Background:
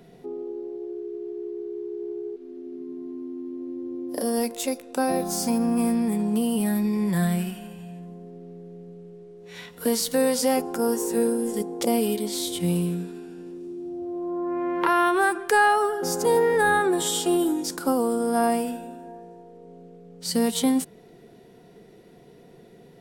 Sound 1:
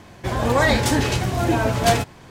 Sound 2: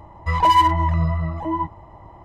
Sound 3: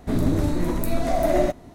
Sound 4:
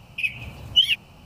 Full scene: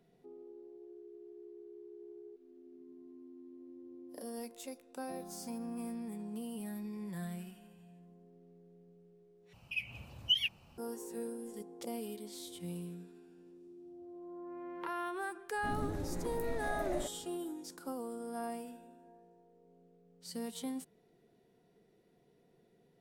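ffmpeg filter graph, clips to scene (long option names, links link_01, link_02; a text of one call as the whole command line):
ffmpeg -i bed.wav -i cue0.wav -i cue1.wav -i cue2.wav -i cue3.wav -filter_complex "[0:a]volume=-18.5dB,asplit=2[link_01][link_02];[link_01]atrim=end=9.534[link_03];[4:a]atrim=end=1.25,asetpts=PTS-STARTPTS,volume=-12.5dB[link_04];[link_02]atrim=start=10.776[link_05];[3:a]atrim=end=1.74,asetpts=PTS-STARTPTS,volume=-17.5dB,afade=type=in:duration=0.004:curve=hsin,afade=type=out:start_time=1.736:duration=0.004:curve=hsin,adelay=686196S[link_06];[link_03][link_04]acrossfade=duration=0.004:curve1=hsin:curve2=hsin[link_07];[link_07][link_05]acrossfade=duration=0.004:curve1=hsin:curve2=hsin[link_08];[link_08][link_06]amix=inputs=2:normalize=0" out.wav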